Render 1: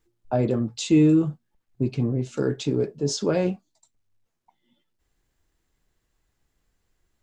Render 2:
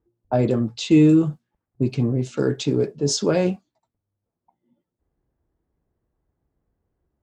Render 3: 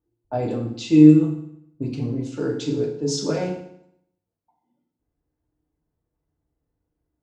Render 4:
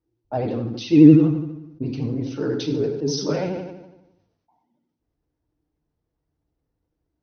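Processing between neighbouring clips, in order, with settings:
HPF 49 Hz; low-pass opened by the level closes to 740 Hz, open at -21.5 dBFS; high shelf 4700 Hz +4.5 dB; gain +3 dB
FDN reverb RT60 0.71 s, low-frequency decay 1.1×, high-frequency decay 0.9×, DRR -0.5 dB; gain -7.5 dB
vibrato 12 Hz 91 cents; brick-wall FIR low-pass 6300 Hz; sustainer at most 58 dB/s

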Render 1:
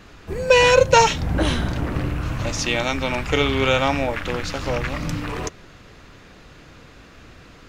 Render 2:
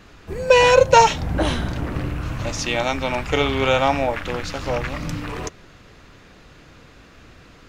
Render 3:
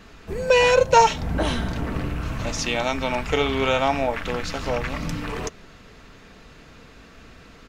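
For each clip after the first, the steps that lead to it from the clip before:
dynamic EQ 750 Hz, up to +6 dB, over -30 dBFS, Q 1.4; gain -1.5 dB
comb 4.5 ms, depth 30%; in parallel at -2.5 dB: compressor, threshold -23 dBFS, peak gain reduction 16 dB; on the sum: gain -5 dB

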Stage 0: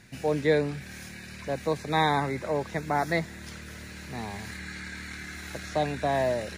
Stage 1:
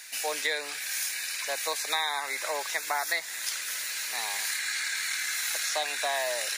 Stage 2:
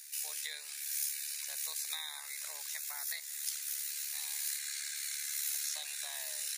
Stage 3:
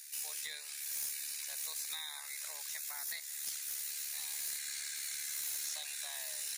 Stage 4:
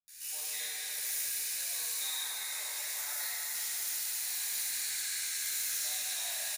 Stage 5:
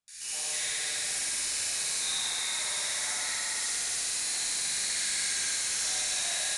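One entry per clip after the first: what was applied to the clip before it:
HPF 680 Hz 12 dB/oct; tilt +4.5 dB/oct; compressor 6:1, threshold -30 dBFS, peak gain reduction 11 dB; gain +4.5 dB
differentiator; AM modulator 72 Hz, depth 35%; gain -2.5 dB
soft clip -32.5 dBFS, distortion -15 dB
bands offset in time lows, highs 80 ms, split 170 Hz; plate-style reverb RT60 4.4 s, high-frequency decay 0.8×, DRR -10 dB; gain -4.5 dB
soft clip -36.5 dBFS, distortion -11 dB; flutter echo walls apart 10.7 m, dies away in 1.5 s; downsampling 22050 Hz; gain +7.5 dB

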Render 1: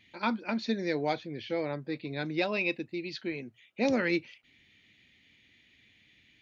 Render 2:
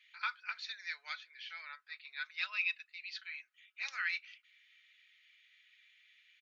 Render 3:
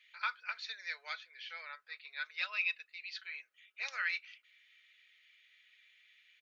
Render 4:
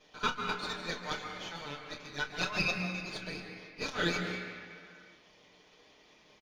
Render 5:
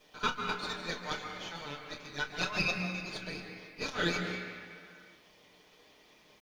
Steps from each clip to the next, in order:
Chebyshev high-pass 1300 Hz, order 4; high shelf 4000 Hz -6 dB; comb 4.7 ms, depth 36%; gain -1 dB
bell 510 Hz +14.5 dB 0.91 oct
minimum comb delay 6.6 ms; early reflections 29 ms -10.5 dB, 44 ms -17 dB; reverb RT60 2.2 s, pre-delay 0.136 s, DRR 4 dB
requantised 12-bit, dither none

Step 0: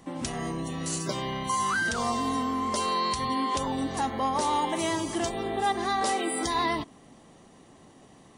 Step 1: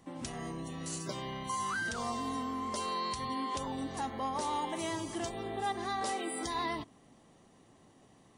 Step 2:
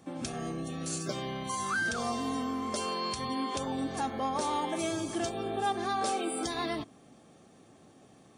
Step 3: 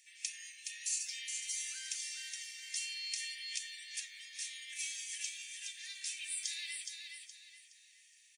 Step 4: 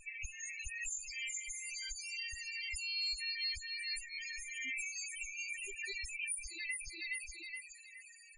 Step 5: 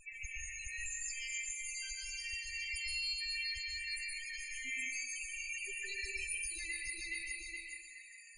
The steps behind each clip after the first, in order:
bell 110 Hz +4.5 dB 0.23 oct; gain -8 dB
notch comb 970 Hz; gain +5 dB
compressor, threshold -32 dBFS, peak gain reduction 6.5 dB; rippled Chebyshev high-pass 1800 Hz, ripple 6 dB; on a send: feedback echo 0.419 s, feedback 34%, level -5.5 dB; on the sum: gain +5 dB
minimum comb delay 0.44 ms; compressor 16:1, threshold -50 dBFS, peak gain reduction 17.5 dB; loudest bins only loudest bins 8; gain +18 dB
plate-style reverb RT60 1 s, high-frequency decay 0.7×, pre-delay 0.11 s, DRR -1.5 dB; gain -2.5 dB

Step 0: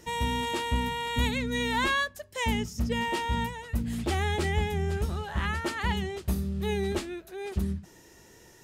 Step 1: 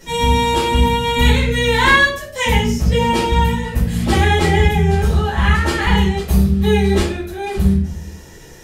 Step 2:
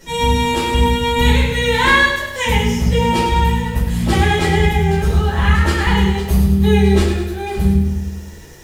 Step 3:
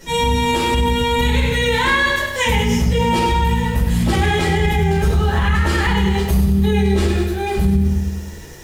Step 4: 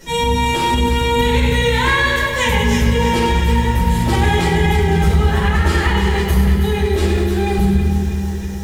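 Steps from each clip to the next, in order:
shoebox room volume 65 m³, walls mixed, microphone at 2.2 m; gain +3 dB
lo-fi delay 0.102 s, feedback 55%, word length 7-bit, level -8 dB; gain -1 dB
maximiser +9.5 dB; gain -7 dB
echo with dull and thin repeats by turns 0.161 s, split 1100 Hz, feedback 78%, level -6 dB

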